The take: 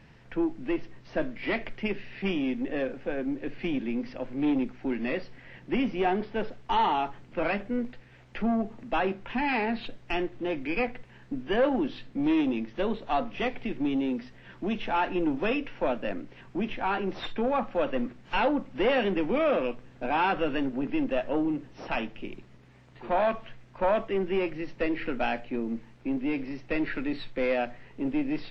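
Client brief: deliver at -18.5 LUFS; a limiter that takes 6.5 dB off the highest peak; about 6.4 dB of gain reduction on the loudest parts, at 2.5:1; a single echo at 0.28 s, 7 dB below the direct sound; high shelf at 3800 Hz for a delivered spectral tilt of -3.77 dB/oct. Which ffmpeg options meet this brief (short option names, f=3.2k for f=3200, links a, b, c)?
-af "highshelf=f=3.8k:g=7,acompressor=threshold=-30dB:ratio=2.5,alimiter=level_in=0.5dB:limit=-24dB:level=0:latency=1,volume=-0.5dB,aecho=1:1:280:0.447,volume=16dB"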